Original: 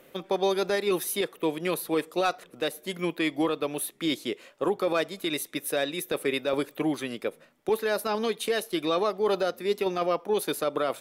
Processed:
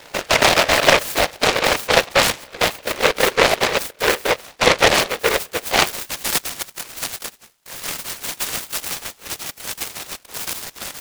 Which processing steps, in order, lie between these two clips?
gliding pitch shift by +9.5 st ending unshifted; in parallel at +2 dB: limiter -24.5 dBFS, peak gain reduction 8.5 dB; on the sum: whisperiser; high-pass sweep 500 Hz -> 2800 Hz, 5.64–6.29; noise-modulated delay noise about 1500 Hz, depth 0.29 ms; gain +3 dB

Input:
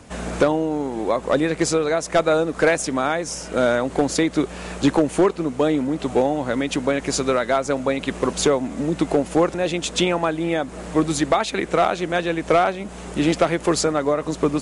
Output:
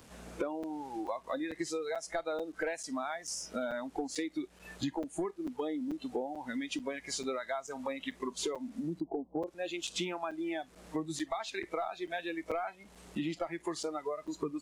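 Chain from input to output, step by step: delta modulation 64 kbps, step -30 dBFS; 9–9.47 steep low-pass 1000 Hz 72 dB/oct; spectral noise reduction 18 dB; compressor 4:1, threshold -33 dBFS, peak gain reduction 16.5 dB; crackling interface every 0.44 s, samples 256, zero, from 0.63; gain -2.5 dB

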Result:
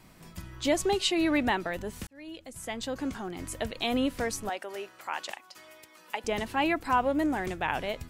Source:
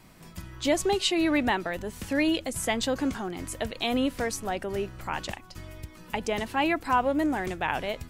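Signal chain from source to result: 2.07–3.56 fade in; 4.49–6.24 HPF 550 Hz 12 dB/oct; gain -1.5 dB

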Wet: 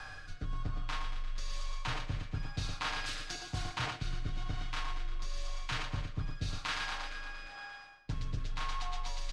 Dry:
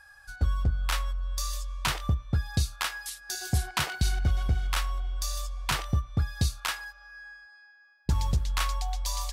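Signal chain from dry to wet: per-bin compression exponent 0.6; air absorption 120 m; comb 6.4 ms, depth 73%; thinning echo 0.116 s, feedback 68%, high-pass 240 Hz, level -8 dB; on a send at -20 dB: reverb RT60 0.75 s, pre-delay 4 ms; on the sum: rotary speaker horn 1 Hz; reverse; compressor 5:1, threshold -37 dBFS, peak gain reduction 16 dB; reverse; frequency shift -20 Hz; gain +3 dB

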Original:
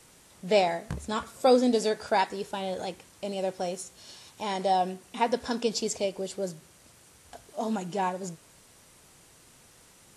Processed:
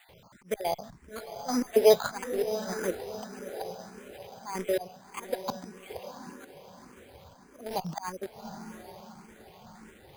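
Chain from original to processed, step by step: random spectral dropouts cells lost 36%; dynamic EQ 1200 Hz, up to +3 dB, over -48 dBFS, Q 1.1; auto swell 0.514 s; in parallel at -7 dB: bit-crush 6-bit; on the sum: diffused feedback echo 0.773 s, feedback 41%, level -9.5 dB; careless resampling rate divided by 8×, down filtered, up hold; endless phaser +1.7 Hz; gain +8.5 dB

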